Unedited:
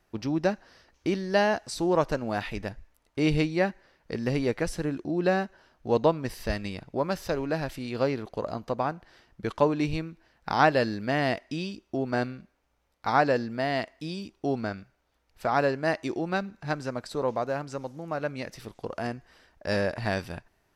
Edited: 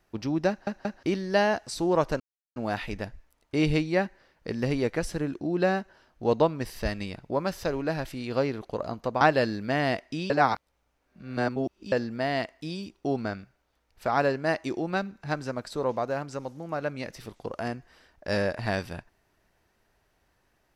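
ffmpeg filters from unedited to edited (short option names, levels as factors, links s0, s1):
-filter_complex "[0:a]asplit=8[s0][s1][s2][s3][s4][s5][s6][s7];[s0]atrim=end=0.672[s8];[s1]atrim=start=0.488:end=0.672[s9];[s2]atrim=start=0.488:end=0.672[s10];[s3]atrim=start=1.028:end=2.2,asetpts=PTS-STARTPTS,afade=t=out:st=1.168:d=0.004:c=hsin,apad=pad_dur=0.36[s11];[s4]atrim=start=2.2:end=8.852,asetpts=PTS-STARTPTS,afade=t=in:d=0.004:c=hsin[s12];[s5]atrim=start=10.598:end=11.692[s13];[s6]atrim=start=11.688:end=13.312,asetpts=PTS-STARTPTS,areverse[s14];[s7]atrim=start=13.308[s15];[s8][s9]acrossfade=d=0.004:c1=hsin:c2=hsin[s16];[s16][s10]acrossfade=d=0.004:c1=hsin:c2=hsin[s17];[s11][s12]concat=n=2:v=0:a=1[s18];[s17][s18]acrossfade=d=0.004:c1=hsin:c2=hsin[s19];[s19][s13]acrossfade=d=0.004:c1=hsin:c2=hsin[s20];[s20][s14]acrossfade=d=0.004:c1=hsin:c2=hsin[s21];[s21][s15]acrossfade=d=0.004:c1=hsin:c2=hsin"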